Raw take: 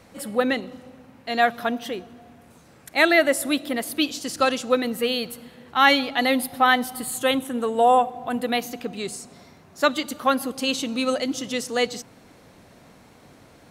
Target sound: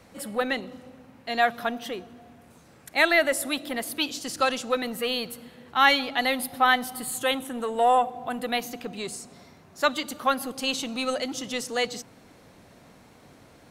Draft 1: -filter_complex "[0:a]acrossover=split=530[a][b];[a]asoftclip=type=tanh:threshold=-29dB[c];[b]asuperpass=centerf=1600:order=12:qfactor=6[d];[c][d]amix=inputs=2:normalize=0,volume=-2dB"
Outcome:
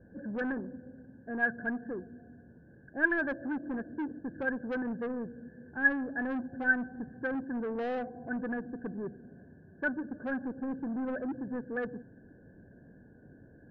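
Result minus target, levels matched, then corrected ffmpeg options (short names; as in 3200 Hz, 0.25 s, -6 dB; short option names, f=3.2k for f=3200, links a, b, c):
2000 Hz band +4.0 dB
-filter_complex "[0:a]acrossover=split=530[a][b];[a]asoftclip=type=tanh:threshold=-29dB[c];[c][b]amix=inputs=2:normalize=0,volume=-2dB"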